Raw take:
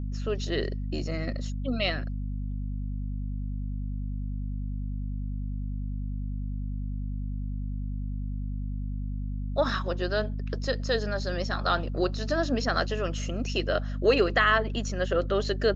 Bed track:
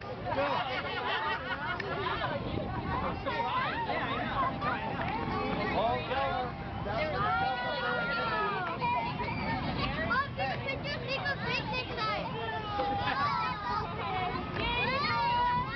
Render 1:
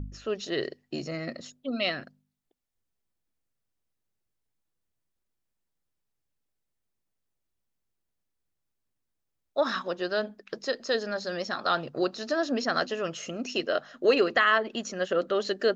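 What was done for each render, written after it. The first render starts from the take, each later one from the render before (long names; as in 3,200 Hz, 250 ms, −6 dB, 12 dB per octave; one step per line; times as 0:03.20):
hum removal 50 Hz, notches 5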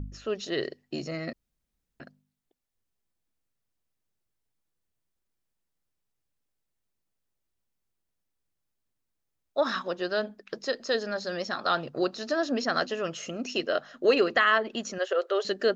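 0:01.33–0:02.00: fill with room tone
0:14.98–0:15.45: linear-phase brick-wall high-pass 350 Hz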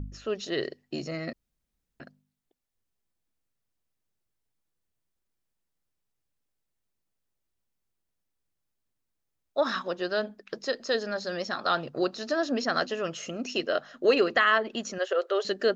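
no processing that can be heard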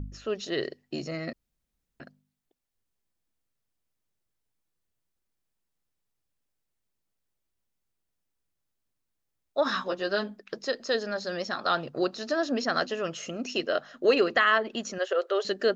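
0:09.64–0:10.39: double-tracking delay 15 ms −4 dB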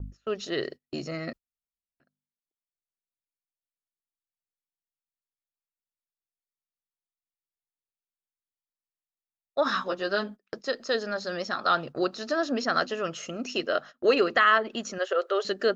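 noise gate −40 dBFS, range −25 dB
parametric band 1,300 Hz +4.5 dB 0.35 octaves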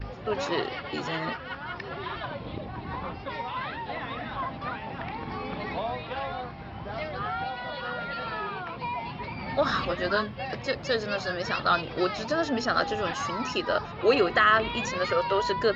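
mix in bed track −2 dB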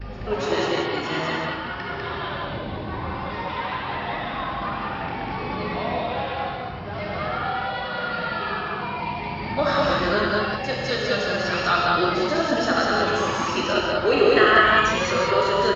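loudspeakers that aren't time-aligned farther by 22 metres −12 dB, 68 metres −1 dB
reverb whose tail is shaped and stops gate 210 ms flat, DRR −1 dB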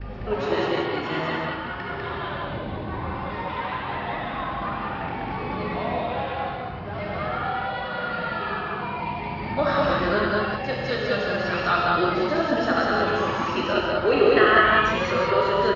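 high-frequency loss of the air 180 metres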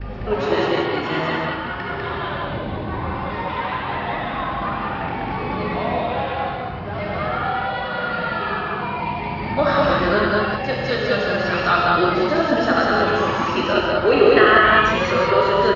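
level +4.5 dB
brickwall limiter −1 dBFS, peak gain reduction 3 dB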